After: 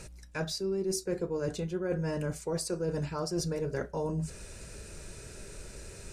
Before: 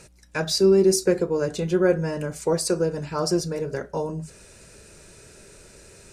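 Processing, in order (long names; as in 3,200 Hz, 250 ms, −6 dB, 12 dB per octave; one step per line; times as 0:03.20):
low-shelf EQ 77 Hz +11.5 dB
reversed playback
downward compressor 10 to 1, threshold −29 dBFS, peak gain reduction 17 dB
reversed playback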